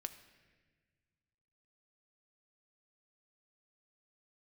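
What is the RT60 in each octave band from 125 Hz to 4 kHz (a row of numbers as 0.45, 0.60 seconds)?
2.5, 2.2, 1.7, 1.3, 1.7, 1.2 seconds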